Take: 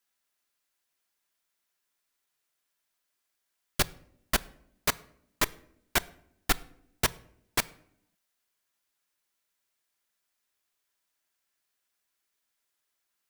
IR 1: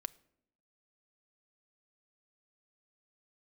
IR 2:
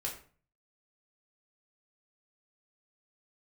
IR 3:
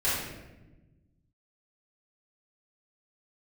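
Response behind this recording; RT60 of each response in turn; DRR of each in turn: 1; 0.75, 0.40, 1.1 seconds; 13.0, −3.0, −12.0 decibels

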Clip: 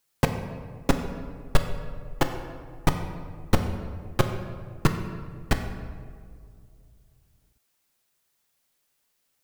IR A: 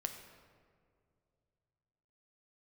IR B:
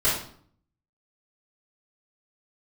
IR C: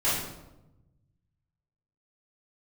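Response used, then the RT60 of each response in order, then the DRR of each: A; 2.3, 0.55, 0.95 seconds; 5.0, −12.5, −12.5 decibels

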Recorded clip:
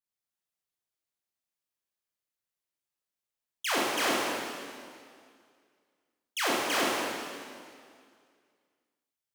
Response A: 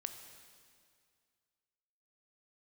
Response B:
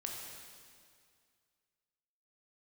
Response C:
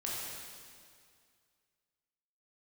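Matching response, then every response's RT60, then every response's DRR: C; 2.1, 2.1, 2.1 seconds; 6.5, −1.0, −6.0 decibels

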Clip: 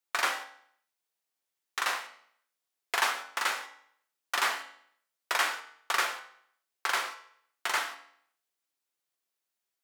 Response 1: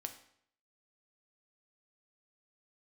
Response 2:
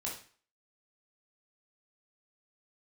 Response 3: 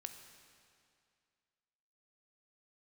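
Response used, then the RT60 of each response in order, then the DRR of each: 1; 0.65, 0.45, 2.3 seconds; 5.5, −4.0, 6.5 decibels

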